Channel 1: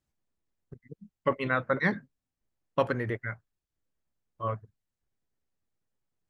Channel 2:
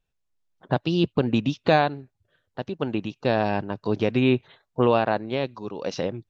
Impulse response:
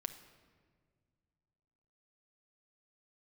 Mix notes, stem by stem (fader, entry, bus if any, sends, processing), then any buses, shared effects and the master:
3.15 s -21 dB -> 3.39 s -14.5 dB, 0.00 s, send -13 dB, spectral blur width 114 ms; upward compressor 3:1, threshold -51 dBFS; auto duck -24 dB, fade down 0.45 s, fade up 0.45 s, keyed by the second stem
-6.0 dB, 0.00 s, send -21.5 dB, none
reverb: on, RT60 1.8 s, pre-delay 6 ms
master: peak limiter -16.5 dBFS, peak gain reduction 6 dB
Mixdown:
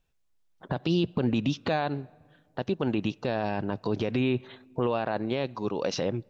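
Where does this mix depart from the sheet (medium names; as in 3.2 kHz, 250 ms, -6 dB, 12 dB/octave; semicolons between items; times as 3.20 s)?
stem 1 -21.0 dB -> -28.0 dB; stem 2 -6.0 dB -> +3.0 dB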